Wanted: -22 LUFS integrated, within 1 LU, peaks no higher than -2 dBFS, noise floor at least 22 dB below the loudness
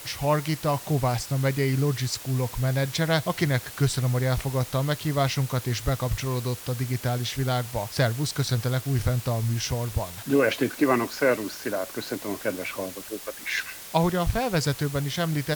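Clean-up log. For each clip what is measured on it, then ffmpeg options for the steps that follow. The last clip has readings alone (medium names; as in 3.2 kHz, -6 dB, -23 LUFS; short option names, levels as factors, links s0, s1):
noise floor -41 dBFS; noise floor target -49 dBFS; loudness -26.5 LUFS; peak level -8.0 dBFS; loudness target -22.0 LUFS
-> -af "afftdn=nr=8:nf=-41"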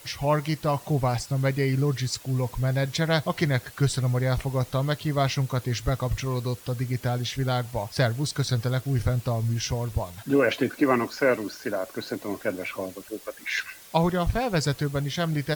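noise floor -47 dBFS; noise floor target -49 dBFS
-> -af "afftdn=nr=6:nf=-47"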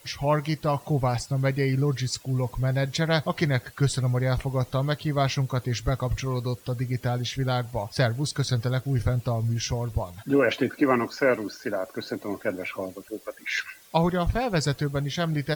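noise floor -51 dBFS; loudness -26.5 LUFS; peak level -8.5 dBFS; loudness target -22.0 LUFS
-> -af "volume=1.68"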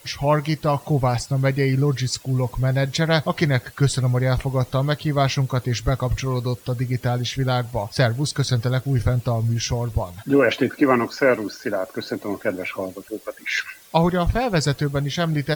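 loudness -22.0 LUFS; peak level -4.0 dBFS; noise floor -46 dBFS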